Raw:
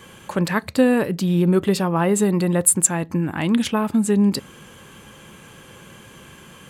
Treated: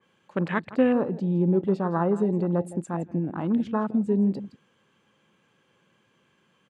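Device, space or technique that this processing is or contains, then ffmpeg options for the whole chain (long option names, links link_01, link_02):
over-cleaned archive recording: -af "highpass=140,lowpass=5100,aecho=1:1:165:0.188,afwtdn=0.0501,adynamicequalizer=threshold=0.00794:dfrequency=2900:dqfactor=0.7:tfrequency=2900:tqfactor=0.7:attack=5:release=100:ratio=0.375:range=1.5:mode=cutabove:tftype=highshelf,volume=-4.5dB"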